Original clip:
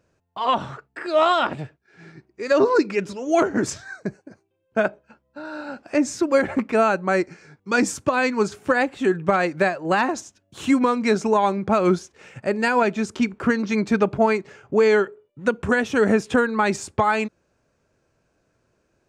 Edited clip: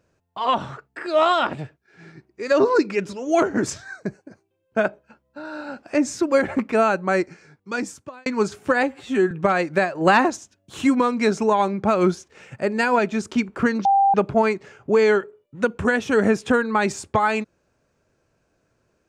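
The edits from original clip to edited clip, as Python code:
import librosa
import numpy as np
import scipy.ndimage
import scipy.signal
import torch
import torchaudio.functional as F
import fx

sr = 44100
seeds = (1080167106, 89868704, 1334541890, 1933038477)

y = fx.edit(x, sr, fx.fade_out_span(start_s=7.2, length_s=1.06),
    fx.stretch_span(start_s=8.83, length_s=0.32, factor=1.5),
    fx.clip_gain(start_s=9.79, length_s=0.35, db=4.5),
    fx.bleep(start_s=13.69, length_s=0.29, hz=790.0, db=-13.0), tone=tone)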